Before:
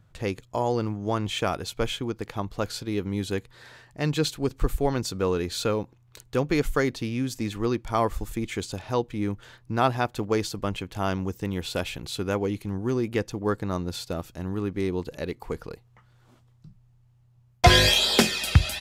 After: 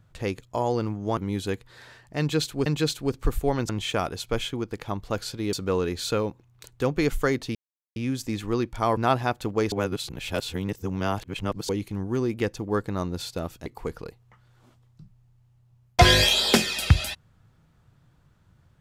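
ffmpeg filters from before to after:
ffmpeg -i in.wav -filter_complex "[0:a]asplit=10[link_01][link_02][link_03][link_04][link_05][link_06][link_07][link_08][link_09][link_10];[link_01]atrim=end=1.172[link_11];[link_02]atrim=start=3.008:end=4.502[link_12];[link_03]atrim=start=4.028:end=5.062[link_13];[link_04]atrim=start=1.168:end=3.012[link_14];[link_05]atrim=start=5.058:end=7.08,asetpts=PTS-STARTPTS,afade=type=out:start_time=2.018:duration=0.004:curve=hsin,apad=pad_dur=0.41[link_15];[link_06]atrim=start=7.08:end=8.092,asetpts=PTS-STARTPTS,afade=type=in:duration=0.004:curve=hsin[link_16];[link_07]atrim=start=9.708:end=10.462[link_17];[link_08]atrim=start=10.458:end=12.432,asetpts=PTS-STARTPTS,areverse[link_18];[link_09]atrim=start=12.428:end=14.402[link_19];[link_10]atrim=start=15.308[link_20];[link_11][link_12]acrossfade=duration=0.004:curve1=hsin:curve2=hsin[link_21];[link_21][link_13]acrossfade=duration=0.004:curve1=hsin:curve2=hsin[link_22];[link_22][link_14]acrossfade=duration=0.004:curve1=hsin:curve2=hsin[link_23];[link_15][link_16]concat=n=2:v=0:a=1[link_24];[link_23][link_24]acrossfade=duration=0.004:curve1=hsin:curve2=hsin[link_25];[link_25][link_17]acrossfade=duration=0.004:curve1=hsin:curve2=hsin[link_26];[link_26][link_18]acrossfade=duration=0.004:curve1=hsin:curve2=hsin[link_27];[link_27][link_19]acrossfade=duration=0.004:curve1=hsin:curve2=hsin[link_28];[link_28][link_20]acrossfade=duration=0.004:curve1=hsin:curve2=hsin" out.wav

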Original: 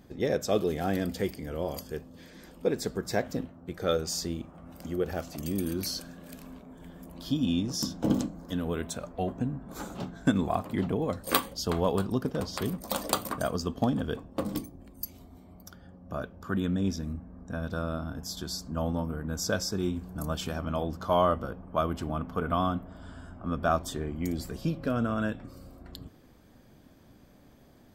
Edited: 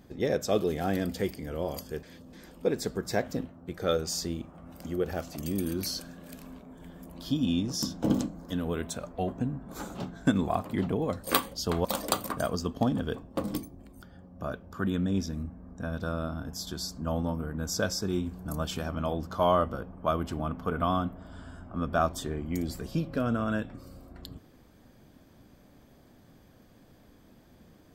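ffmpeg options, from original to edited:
ffmpeg -i in.wav -filter_complex "[0:a]asplit=5[link_01][link_02][link_03][link_04][link_05];[link_01]atrim=end=2.032[link_06];[link_02]atrim=start=2.028:end=2.332,asetpts=PTS-STARTPTS,areverse[link_07];[link_03]atrim=start=2.328:end=11.852[link_08];[link_04]atrim=start=12.858:end=15.032[link_09];[link_05]atrim=start=15.718[link_10];[link_06][link_07]acrossfade=duration=0.004:curve1=hsin:curve2=hsin[link_11];[link_11][link_08]acrossfade=duration=0.004:curve1=hsin:curve2=hsin[link_12];[link_12][link_09]acrossfade=duration=0.004:curve1=hsin:curve2=hsin[link_13];[link_13][link_10]acrossfade=duration=0.004:curve1=hsin:curve2=hsin" out.wav

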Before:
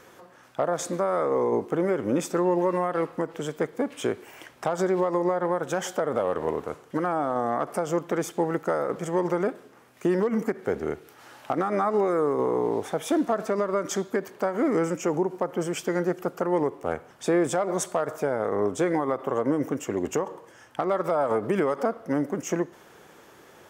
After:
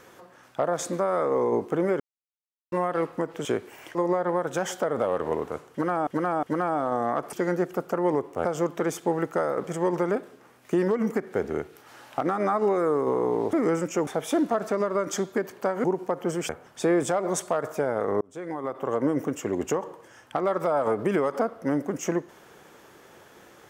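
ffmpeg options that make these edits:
ffmpeg -i in.wav -filter_complex "[0:a]asplit=14[link_01][link_02][link_03][link_04][link_05][link_06][link_07][link_08][link_09][link_10][link_11][link_12][link_13][link_14];[link_01]atrim=end=2,asetpts=PTS-STARTPTS,afade=type=out:start_time=1.996:duration=0.004:curve=hsin[link_15];[link_02]atrim=start=2:end=2.72,asetpts=PTS-STARTPTS,volume=0[link_16];[link_03]atrim=start=2.72:end=3.452,asetpts=PTS-STARTPTS,afade=type=in:duration=0.004:curve=hsin[link_17];[link_04]atrim=start=3.998:end=4.502[link_18];[link_05]atrim=start=5.108:end=7.232[link_19];[link_06]atrim=start=6.868:end=7.232[link_20];[link_07]atrim=start=6.868:end=7.772[link_21];[link_08]atrim=start=15.808:end=16.932[link_22];[link_09]atrim=start=7.768:end=12.852[link_23];[link_10]atrim=start=14.618:end=15.162[link_24];[link_11]atrim=start=12.848:end=14.622[link_25];[link_12]atrim=start=15.158:end=15.812[link_26];[link_13]atrim=start=16.928:end=18.65,asetpts=PTS-STARTPTS,afade=type=out:start_time=1.718:duration=0.004:curve=hsin[link_27];[link_14]atrim=start=18.65,asetpts=PTS-STARTPTS,afade=type=in:duration=0.79[link_28];[link_15][link_16][link_17]concat=n=3:v=0:a=1[link_29];[link_29][link_18]acrossfade=duration=0.004:curve1=hsin:curve2=hsin[link_30];[link_30][link_19]acrossfade=duration=0.004:curve1=hsin:curve2=hsin[link_31];[link_31][link_20]acrossfade=duration=0.004:curve1=hsin:curve2=hsin[link_32];[link_32][link_21]acrossfade=duration=0.004:curve1=hsin:curve2=hsin[link_33];[link_33][link_22]acrossfade=duration=0.004:curve1=hsin:curve2=hsin[link_34];[link_34][link_23]acrossfade=duration=0.004:curve1=hsin:curve2=hsin[link_35];[link_35][link_24]acrossfade=duration=0.004:curve1=hsin:curve2=hsin[link_36];[link_36][link_25]acrossfade=duration=0.004:curve1=hsin:curve2=hsin[link_37];[link_37][link_26]acrossfade=duration=0.004:curve1=hsin:curve2=hsin[link_38];[link_27][link_28]concat=n=2:v=0:a=1[link_39];[link_38][link_39]acrossfade=duration=0.004:curve1=hsin:curve2=hsin" out.wav

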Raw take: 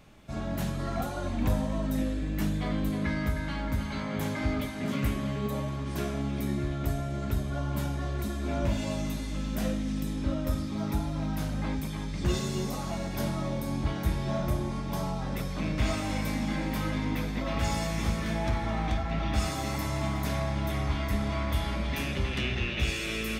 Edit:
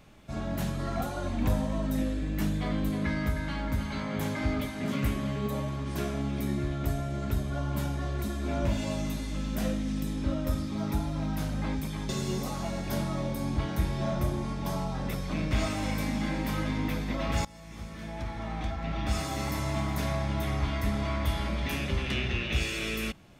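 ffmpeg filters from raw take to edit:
ffmpeg -i in.wav -filter_complex "[0:a]asplit=3[link_01][link_02][link_03];[link_01]atrim=end=12.092[link_04];[link_02]atrim=start=12.358:end=17.72,asetpts=PTS-STARTPTS,afade=type=out:start_time=5.358:duration=0.004:curve=hsin:silence=0.0707946[link_05];[link_03]atrim=start=17.72,asetpts=PTS-STARTPTS,afade=type=in:duration=2.02:silence=0.0707946[link_06];[link_05][link_06]concat=n=2:v=0:a=1[link_07];[link_04][link_07]acrossfade=duration=0.004:curve1=hsin:curve2=hsin" out.wav

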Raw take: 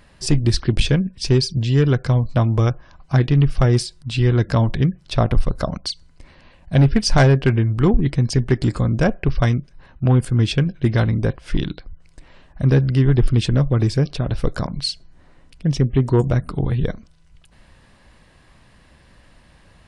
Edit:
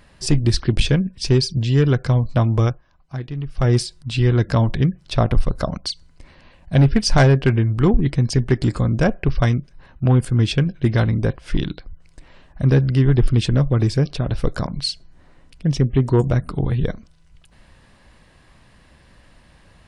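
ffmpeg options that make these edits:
ffmpeg -i in.wav -filter_complex "[0:a]asplit=3[link_01][link_02][link_03];[link_01]atrim=end=2.81,asetpts=PTS-STARTPTS,afade=type=out:start_time=2.65:duration=0.16:silence=0.237137[link_04];[link_02]atrim=start=2.81:end=3.53,asetpts=PTS-STARTPTS,volume=-12.5dB[link_05];[link_03]atrim=start=3.53,asetpts=PTS-STARTPTS,afade=type=in:duration=0.16:silence=0.237137[link_06];[link_04][link_05][link_06]concat=n=3:v=0:a=1" out.wav

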